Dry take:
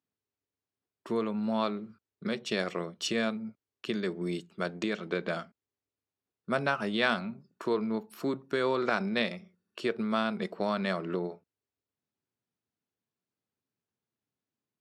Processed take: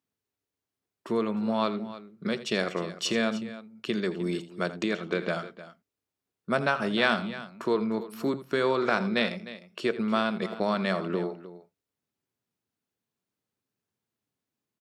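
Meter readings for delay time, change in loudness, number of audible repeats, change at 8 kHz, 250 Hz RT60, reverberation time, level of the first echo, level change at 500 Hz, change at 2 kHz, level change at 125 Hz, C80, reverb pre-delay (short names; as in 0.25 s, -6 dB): 83 ms, +3.0 dB, 2, +3.5 dB, none, none, -15.0 dB, +3.5 dB, +3.5 dB, +3.0 dB, none, none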